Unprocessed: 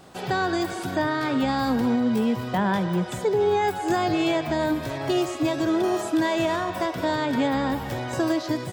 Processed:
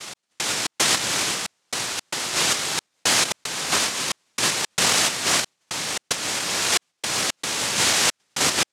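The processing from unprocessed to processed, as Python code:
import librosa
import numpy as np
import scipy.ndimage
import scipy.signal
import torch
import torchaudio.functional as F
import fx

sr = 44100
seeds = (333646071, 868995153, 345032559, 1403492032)

y = fx.octave_divider(x, sr, octaves=1, level_db=2.0)
y = scipy.signal.sosfilt(scipy.signal.butter(2, 170.0, 'highpass', fs=sr, output='sos'), y)
y = fx.noise_vocoder(y, sr, seeds[0], bands=1)
y = fx.echo_split(y, sr, split_hz=1400.0, low_ms=81, high_ms=436, feedback_pct=52, wet_db=-12.5)
y = fx.step_gate(y, sr, bpm=113, pattern='x..xx.xxxx', floor_db=-60.0, edge_ms=4.5)
y = fx.over_compress(y, sr, threshold_db=-31.0, ratio=-1.0)
y = F.gain(torch.from_numpy(y), 7.0).numpy()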